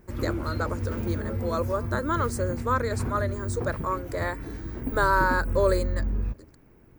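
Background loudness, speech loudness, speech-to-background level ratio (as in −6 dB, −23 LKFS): −32.0 LKFS, −28.5 LKFS, 3.5 dB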